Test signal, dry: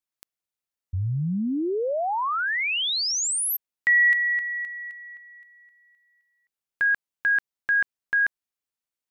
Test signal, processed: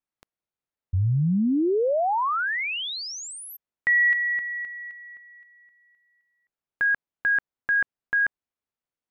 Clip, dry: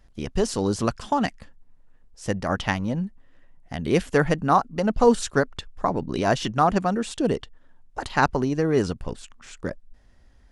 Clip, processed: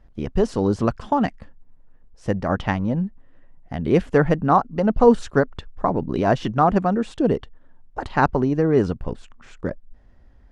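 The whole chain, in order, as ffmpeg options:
ffmpeg -i in.wav -af "lowpass=frequency=1200:poles=1,volume=4dB" out.wav

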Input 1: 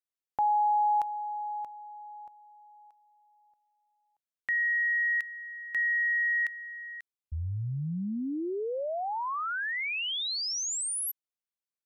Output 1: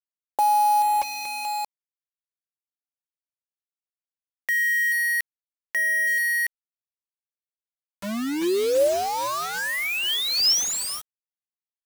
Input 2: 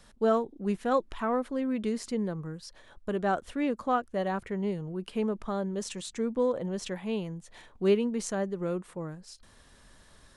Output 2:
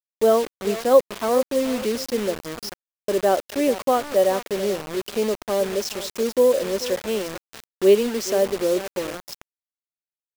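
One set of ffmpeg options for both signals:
ffmpeg -i in.wav -af "highpass=frequency=230:width=0.5412,highpass=frequency=230:width=1.3066,equalizer=frequency=370:width_type=q:width=4:gain=5,equalizer=frequency=560:width_type=q:width=4:gain=10,equalizer=frequency=1400:width_type=q:width=4:gain=-6,equalizer=frequency=3100:width_type=q:width=4:gain=3,equalizer=frequency=5200:width_type=q:width=4:gain=10,lowpass=frequency=7700:width=0.5412,lowpass=frequency=7700:width=1.3066,aecho=1:1:433|866:0.168|0.0386,acrusher=bits=5:mix=0:aa=0.000001,volume=5dB" out.wav

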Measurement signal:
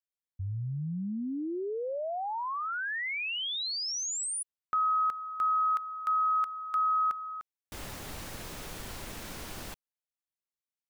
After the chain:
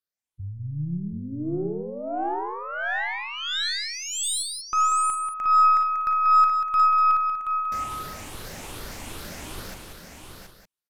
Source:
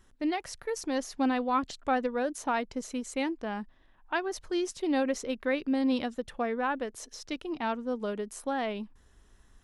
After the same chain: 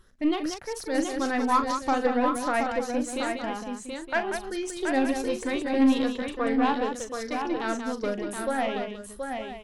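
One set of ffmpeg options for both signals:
ffmpeg -i in.wav -filter_complex "[0:a]afftfilt=real='re*pow(10,10/40*sin(2*PI*(0.62*log(max(b,1)*sr/1024/100)/log(2)-(2.5)*(pts-256)/sr)))':imag='im*pow(10,10/40*sin(2*PI*(0.62*log(max(b,1)*sr/1024/100)/log(2)-(2.5)*(pts-256)/sr)))':win_size=1024:overlap=0.75,asplit=2[link_01][link_02];[link_02]aecho=0:1:726:0.531[link_03];[link_01][link_03]amix=inputs=2:normalize=0,aresample=32000,aresample=44100,aeval=exprs='0.211*(cos(1*acos(clip(val(0)/0.211,-1,1)))-cos(1*PI/2))+0.00376*(cos(3*acos(clip(val(0)/0.211,-1,1)))-cos(3*PI/2))+0.00944*(cos(6*acos(clip(val(0)/0.211,-1,1)))-cos(6*PI/2))':channel_layout=same,asplit=2[link_04][link_05];[link_05]aecho=0:1:40.82|186.6:0.316|0.447[link_06];[link_04][link_06]amix=inputs=2:normalize=0,volume=1.5dB" out.wav

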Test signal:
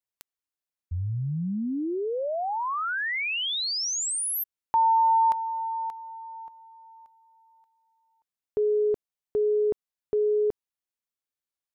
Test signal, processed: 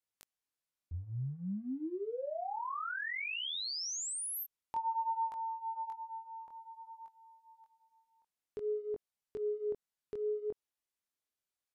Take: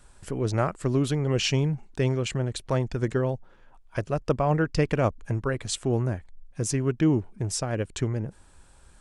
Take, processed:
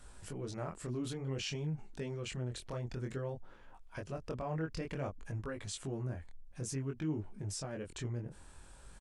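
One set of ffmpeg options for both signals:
ffmpeg -i in.wav -af "acompressor=threshold=-45dB:ratio=2:attack=0.52:release=71:knee=1:detection=peak,flanger=delay=19:depth=6.2:speed=0.55,aresample=32000,aresample=44100,volume=2.5dB" out.wav

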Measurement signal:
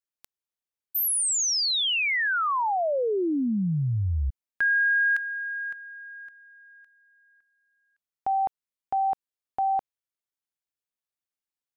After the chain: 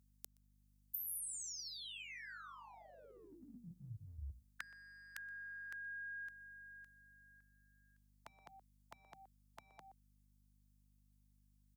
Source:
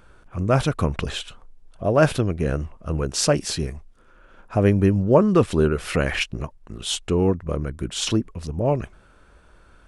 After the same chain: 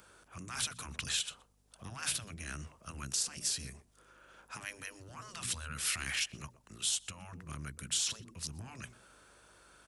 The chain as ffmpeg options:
ffmpeg -i in.wav -filter_complex "[0:a]highpass=87,acrossover=split=330[link_01][link_02];[link_02]acompressor=threshold=-28dB:ratio=4:attack=3.8:release=23:knee=2.83:detection=peak[link_03];[link_01][link_03]amix=inputs=2:normalize=0,bass=frequency=250:gain=-8,treble=frequency=4000:gain=6,bandreject=frequency=60:width_type=h:width=6,bandreject=frequency=120:width_type=h:width=6,bandreject=frequency=180:width_type=h:width=6,bandreject=frequency=240:width_type=h:width=6,asplit=2[link_04][link_05];[link_05]adelay=122.4,volume=-25dB,highshelf=frequency=4000:gain=-2.76[link_06];[link_04][link_06]amix=inputs=2:normalize=0,afftfilt=real='re*lt(hypot(re,im),0.178)':imag='im*lt(hypot(re,im),0.178)':win_size=1024:overlap=0.75,highshelf=frequency=4400:gain=7,acrossover=split=200|1200[link_07][link_08][link_09];[link_08]acompressor=threshold=-52dB:ratio=8:attack=0.12:release=61:knee=6:detection=rms[link_10];[link_09]alimiter=limit=-16.5dB:level=0:latency=1:release=447[link_11];[link_07][link_10][link_11]amix=inputs=3:normalize=0,aeval=exprs='val(0)+0.000501*(sin(2*PI*50*n/s)+sin(2*PI*2*50*n/s)/2+sin(2*PI*3*50*n/s)/3+sin(2*PI*4*50*n/s)/4+sin(2*PI*5*50*n/s)/5)':channel_layout=same,volume=-5dB" out.wav

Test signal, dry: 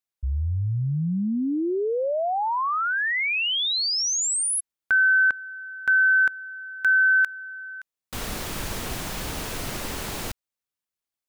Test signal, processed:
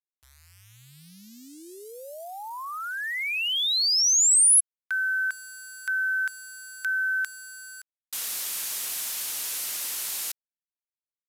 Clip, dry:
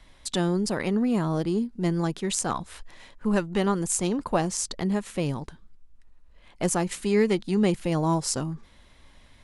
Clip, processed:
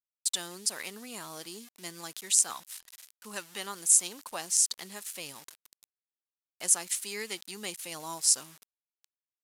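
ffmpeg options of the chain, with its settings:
ffmpeg -i in.wav -af "aeval=exprs='val(0)*gte(abs(val(0)),0.00891)':channel_layout=same,aresample=32000,aresample=44100,aderivative,volume=5.5dB" out.wav

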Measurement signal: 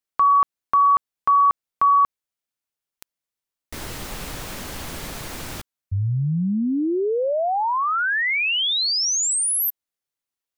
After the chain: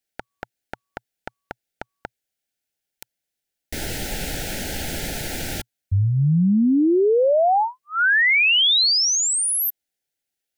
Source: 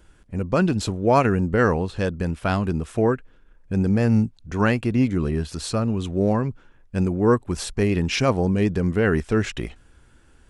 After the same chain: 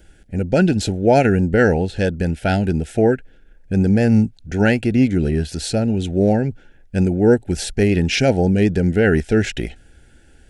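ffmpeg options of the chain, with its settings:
ffmpeg -i in.wav -filter_complex "[0:a]acrossover=split=4200[link_01][link_02];[link_02]acompressor=threshold=-26dB:ratio=4:attack=1:release=60[link_03];[link_01][link_03]amix=inputs=2:normalize=0,asuperstop=centerf=1100:order=8:qfactor=2.1,equalizer=frequency=120:width_type=o:width=0.23:gain=-3.5,volume=5dB" out.wav

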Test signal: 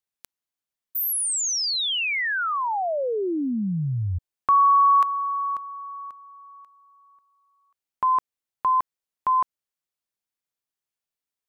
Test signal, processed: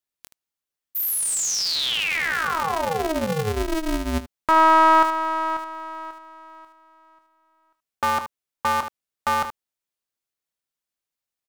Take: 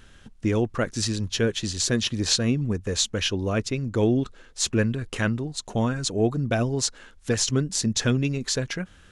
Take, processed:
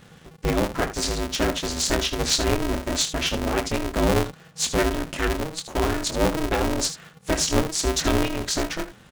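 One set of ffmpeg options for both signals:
ffmpeg -i in.wav -filter_complex "[0:a]asplit=2[link_01][link_02];[link_02]aecho=0:1:23|76:0.447|0.266[link_03];[link_01][link_03]amix=inputs=2:normalize=0,aeval=exprs='val(0)*sgn(sin(2*PI*160*n/s))':channel_layout=same" out.wav

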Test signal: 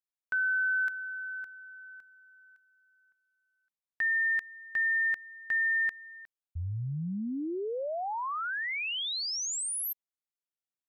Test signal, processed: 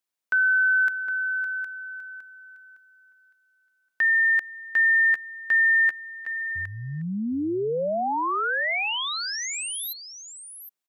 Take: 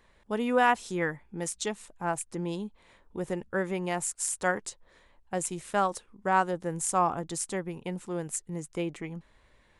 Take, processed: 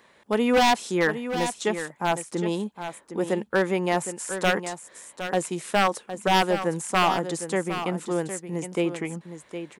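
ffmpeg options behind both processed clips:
ffmpeg -i in.wav -filter_complex "[0:a]acrossover=split=2500[link_01][link_02];[link_02]acompressor=threshold=-40dB:ratio=4:attack=1:release=60[link_03];[link_01][link_03]amix=inputs=2:normalize=0,highpass=190,aeval=exprs='0.0891*(abs(mod(val(0)/0.0891+3,4)-2)-1)':channel_layout=same,asplit=2[link_04][link_05];[link_05]aecho=0:1:762:0.316[link_06];[link_04][link_06]amix=inputs=2:normalize=0,volume=8dB" out.wav

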